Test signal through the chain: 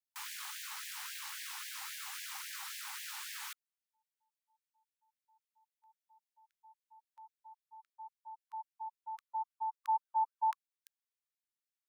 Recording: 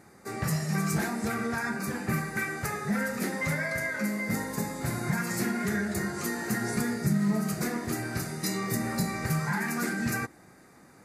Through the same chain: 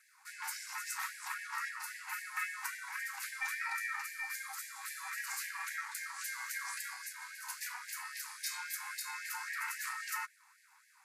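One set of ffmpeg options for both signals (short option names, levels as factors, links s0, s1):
-af "aeval=exprs='val(0)*sin(2*PI*270*n/s)':c=same,afftfilt=real='re*gte(b*sr/1024,750*pow(1600/750,0.5+0.5*sin(2*PI*3.7*pts/sr)))':imag='im*gte(b*sr/1024,750*pow(1600/750,0.5+0.5*sin(2*PI*3.7*pts/sr)))':win_size=1024:overlap=0.75,volume=0.794"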